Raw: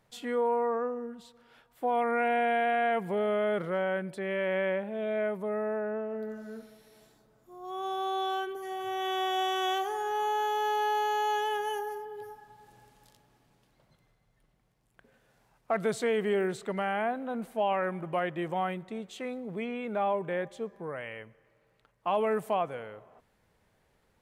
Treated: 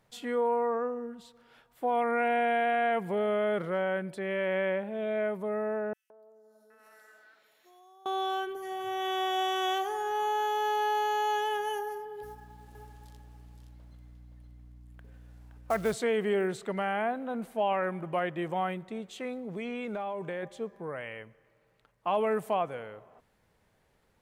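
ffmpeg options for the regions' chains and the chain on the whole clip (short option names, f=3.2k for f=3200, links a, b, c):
-filter_complex "[0:a]asettb=1/sr,asplit=3[a][b][c];[a]atrim=end=5.934[d];[b]atrim=start=5.93:end=8.06,asetpts=PTS-STARTPTS,afade=t=in:d=0.004:c=qsin,afade=t=out:st=2.126:d=0.004:c=qsin,acrossover=split=1100|4400[e][f][g];[e]adelay=170[h];[f]adelay=770[i];[h][i][g]amix=inputs=3:normalize=0,atrim=end_sample=93933,acompressor=threshold=-49dB:ratio=16:attack=3.2:release=140:knee=1:detection=peak,highpass=560[j];[c]atrim=start=8.056[k];[d][j]acrossfade=d=0.004:c1=hsin:c2=qsin[l];[l][k]acrossfade=d=0.004:c1=qsin:c2=hsin,asettb=1/sr,asplit=3[m][n][o];[m]atrim=end=12.234[p];[n]atrim=start=12.23:end=15.94,asetpts=PTS-STARTPTS,afade=t=in:d=0.004:c=qsin,afade=t=out:st=3.706:d=0.004:c=qsin,acrusher=bits=5:mode=log:mix=0:aa=0.000001,aeval=exprs='val(0)+0.00282*(sin(2*PI*60*n/s)+sin(2*PI*2*60*n/s)/2+sin(2*PI*3*60*n/s)/3+sin(2*PI*4*60*n/s)/4+sin(2*PI*5*60*n/s)/5)':c=same,aecho=1:1:519:0.447,atrim=end_sample=163611[q];[o]atrim=start=15.936[r];[p][q]acrossfade=d=0.004:c1=hsin:c2=qsin[s];[s][r]acrossfade=d=0.004:c1=qsin:c2=hsin,asettb=1/sr,asplit=3[t][u][v];[t]atrim=end=19.514[w];[u]atrim=start=19.51:end=20.43,asetpts=PTS-STARTPTS,afade=t=in:d=0.004:c=qsin,afade=t=out:st=0.916:d=0.004:c=qsin,equalizer=f=6.1k:t=o:w=1.1:g=8.5,acompressor=threshold=-31dB:ratio=10:attack=3.2:release=140:knee=1:detection=peak[x];[v]atrim=start=20.426[y];[w][x]acrossfade=d=0.004:c1=hsin:c2=qsin[z];[z][y]acrossfade=d=0.004:c1=qsin:c2=hsin"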